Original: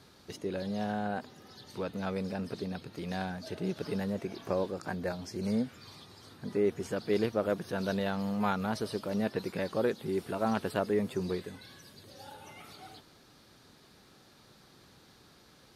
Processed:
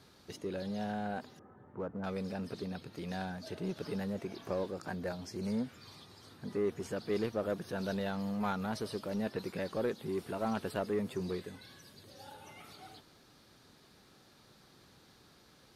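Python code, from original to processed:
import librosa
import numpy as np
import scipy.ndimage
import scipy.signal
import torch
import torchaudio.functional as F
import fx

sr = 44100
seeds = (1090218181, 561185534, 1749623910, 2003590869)

p1 = fx.cheby2_lowpass(x, sr, hz=4800.0, order=4, stop_db=60, at=(1.39, 2.04))
p2 = np.clip(p1, -10.0 ** (-32.0 / 20.0), 10.0 ** (-32.0 / 20.0))
p3 = p1 + F.gain(torch.from_numpy(p2), -5.0).numpy()
y = F.gain(torch.from_numpy(p3), -6.5).numpy()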